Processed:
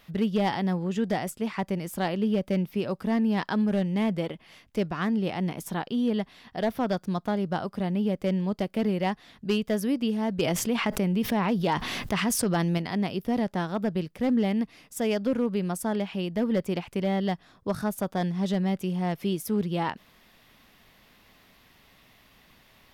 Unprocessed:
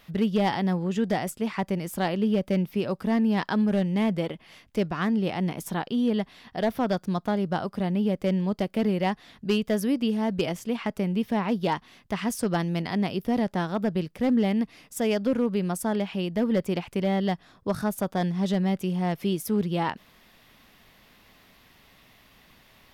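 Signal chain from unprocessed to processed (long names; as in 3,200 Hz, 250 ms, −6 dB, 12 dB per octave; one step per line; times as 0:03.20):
0:10.39–0:12.78: envelope flattener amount 70%
level −1.5 dB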